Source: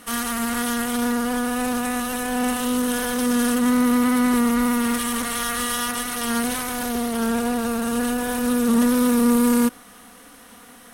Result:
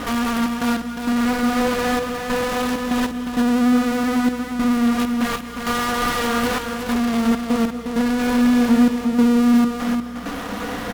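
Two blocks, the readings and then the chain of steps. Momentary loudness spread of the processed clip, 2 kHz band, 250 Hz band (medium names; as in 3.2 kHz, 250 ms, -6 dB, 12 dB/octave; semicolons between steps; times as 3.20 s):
8 LU, +2.0 dB, +3.0 dB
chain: median filter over 5 samples; treble shelf 2.1 kHz -10 dB; flange 0.24 Hz, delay 7.3 ms, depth 3.3 ms, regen -38%; in parallel at -10.5 dB: fuzz box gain 53 dB, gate -60 dBFS; on the sum: trance gate "xxx.x..xxxxxx.." 98 bpm; hum 60 Hz, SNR 21 dB; delay 356 ms -6 dB; gated-style reverb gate 270 ms rising, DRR 10.5 dB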